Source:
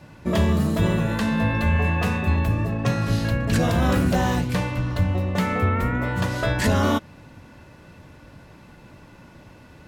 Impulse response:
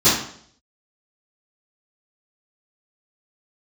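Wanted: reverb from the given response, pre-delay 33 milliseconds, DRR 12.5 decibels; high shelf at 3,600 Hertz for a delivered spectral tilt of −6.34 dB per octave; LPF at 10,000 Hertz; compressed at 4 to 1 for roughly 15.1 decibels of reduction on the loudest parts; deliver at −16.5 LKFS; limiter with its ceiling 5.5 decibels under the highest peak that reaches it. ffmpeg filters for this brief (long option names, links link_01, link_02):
-filter_complex "[0:a]lowpass=10000,highshelf=frequency=3600:gain=-4,acompressor=threshold=-35dB:ratio=4,alimiter=level_in=4.5dB:limit=-24dB:level=0:latency=1,volume=-4.5dB,asplit=2[link_01][link_02];[1:a]atrim=start_sample=2205,adelay=33[link_03];[link_02][link_03]afir=irnorm=-1:irlink=0,volume=-33.5dB[link_04];[link_01][link_04]amix=inputs=2:normalize=0,volume=22dB"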